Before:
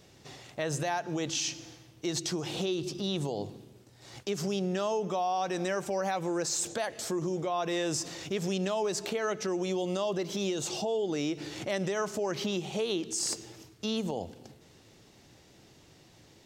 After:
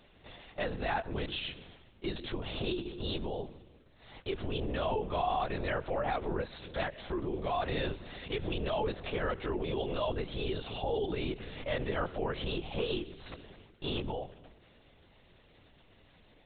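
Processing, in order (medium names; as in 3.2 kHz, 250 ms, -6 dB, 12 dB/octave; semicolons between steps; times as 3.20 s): bass shelf 390 Hz -5.5 dB; LPC vocoder at 8 kHz whisper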